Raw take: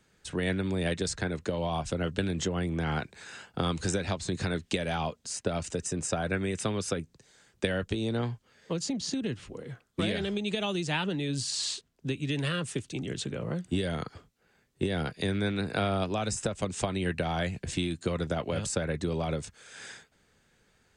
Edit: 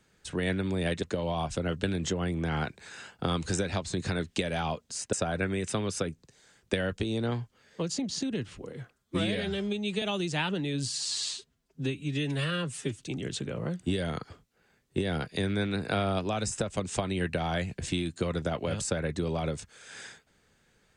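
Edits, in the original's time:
1.03–1.38 s: delete
5.48–6.04 s: delete
9.85–10.57 s: stretch 1.5×
11.46–12.86 s: stretch 1.5×

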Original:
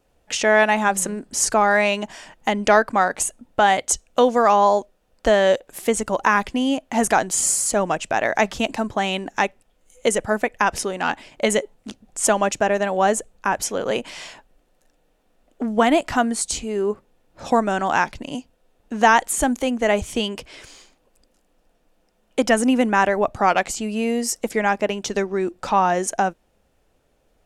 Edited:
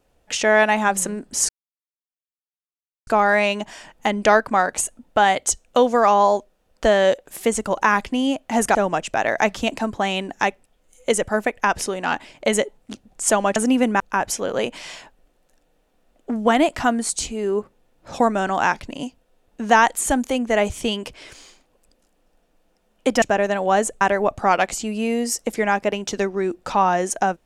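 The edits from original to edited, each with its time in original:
1.49 s: insert silence 1.58 s
7.17–7.72 s: delete
12.53–13.32 s: swap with 22.54–22.98 s

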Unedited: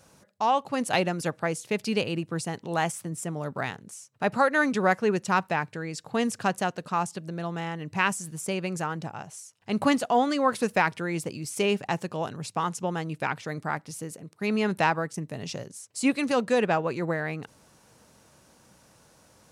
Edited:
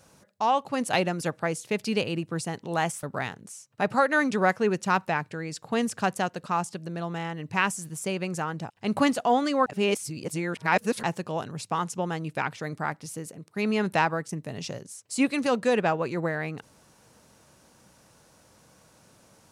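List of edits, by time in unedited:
3.03–3.45 s: delete
9.12–9.55 s: delete
10.51–11.88 s: reverse

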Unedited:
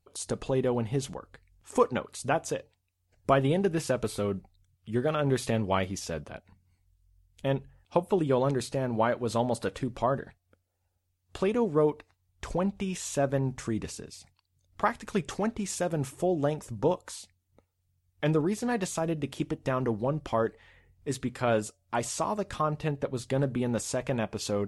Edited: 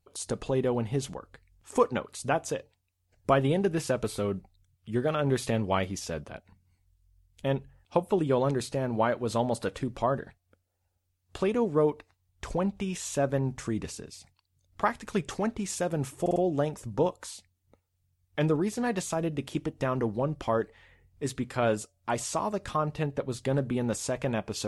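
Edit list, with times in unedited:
16.21 s: stutter 0.05 s, 4 plays

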